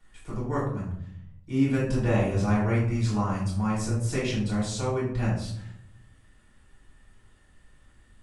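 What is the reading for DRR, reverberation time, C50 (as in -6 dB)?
-7.5 dB, 0.65 s, 3.5 dB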